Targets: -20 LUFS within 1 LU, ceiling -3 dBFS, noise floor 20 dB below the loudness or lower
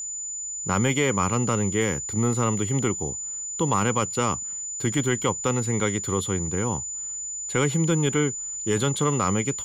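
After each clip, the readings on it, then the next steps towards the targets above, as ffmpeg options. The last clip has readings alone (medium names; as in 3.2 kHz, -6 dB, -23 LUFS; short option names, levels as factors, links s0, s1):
steady tone 7 kHz; tone level -30 dBFS; loudness -24.5 LUFS; peak level -11.0 dBFS; loudness target -20.0 LUFS
-> -af "bandreject=f=7000:w=30"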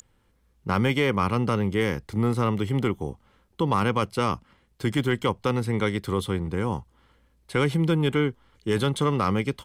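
steady tone not found; loudness -25.5 LUFS; peak level -11.5 dBFS; loudness target -20.0 LUFS
-> -af "volume=1.88"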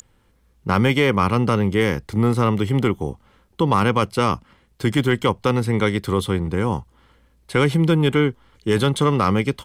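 loudness -20.0 LUFS; peak level -6.5 dBFS; noise floor -60 dBFS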